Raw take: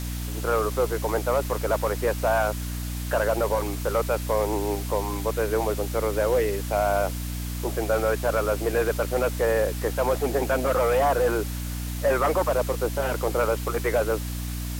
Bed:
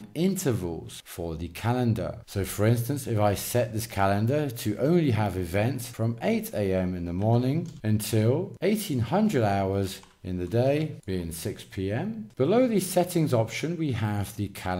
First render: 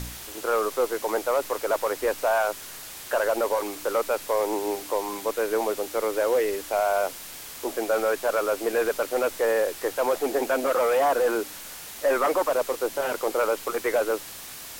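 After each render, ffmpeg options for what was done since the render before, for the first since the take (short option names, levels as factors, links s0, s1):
-af "bandreject=f=60:t=h:w=4,bandreject=f=120:t=h:w=4,bandreject=f=180:t=h:w=4,bandreject=f=240:t=h:w=4,bandreject=f=300:t=h:w=4"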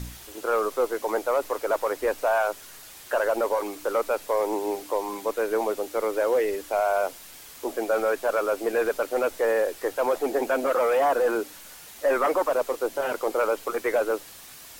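-af "afftdn=nr=6:nf=-40"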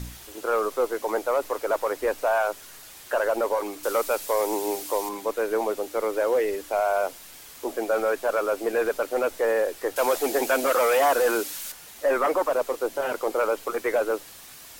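-filter_complex "[0:a]asettb=1/sr,asplit=3[s0][s1][s2];[s0]atrim=end=3.834[s3];[s1]atrim=start=3.83:end=5.09,asetpts=PTS-STARTPTS,afade=t=in:d=0.004:c=qsin,afade=t=out:st=1.256:d=0.004:c=qsin,highshelf=f=3400:g=10[s4];[s2]atrim=start=5.086[s5];[s3][s4]acrossfade=d=0.004:c1=hsin:c2=qsin[s6];[s6][s5]acrossfade=d=0.004:c1=qsin:c2=hsin,asettb=1/sr,asplit=3[s7][s8][s9];[s7]atrim=end=9.964[s10];[s8]atrim=start=9.96:end=11.72,asetpts=PTS-STARTPTS,afade=t=in:d=0.004:c=qsin,afade=t=out:st=1.756:d=0.004:c=qsin,highshelf=f=2100:g=11.5[s11];[s9]atrim=start=11.716[s12];[s10][s11]acrossfade=d=0.004:c1=hsin:c2=qsin[s13];[s13][s12]acrossfade=d=0.004:c1=qsin:c2=hsin"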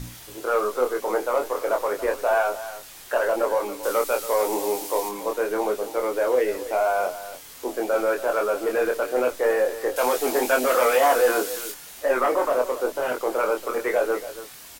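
-filter_complex "[0:a]asplit=2[s0][s1];[s1]adelay=24,volume=0.631[s2];[s0][s2]amix=inputs=2:normalize=0,aecho=1:1:281:0.2"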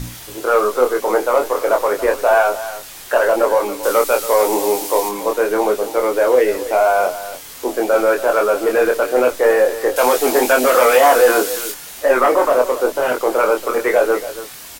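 -af "volume=2.51,alimiter=limit=0.794:level=0:latency=1"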